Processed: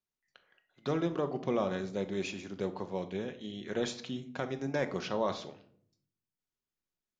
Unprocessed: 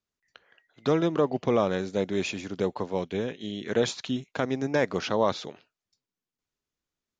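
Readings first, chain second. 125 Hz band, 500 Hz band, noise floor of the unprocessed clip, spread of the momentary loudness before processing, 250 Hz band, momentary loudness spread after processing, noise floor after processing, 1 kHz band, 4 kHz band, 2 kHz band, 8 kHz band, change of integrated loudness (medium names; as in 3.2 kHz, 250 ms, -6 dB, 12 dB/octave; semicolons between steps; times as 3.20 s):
-6.0 dB, -7.5 dB, under -85 dBFS, 8 LU, -6.5 dB, 8 LU, under -85 dBFS, -7.0 dB, -7.5 dB, -7.5 dB, no reading, -7.5 dB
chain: simulated room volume 870 m³, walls furnished, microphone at 1 m; trim -8 dB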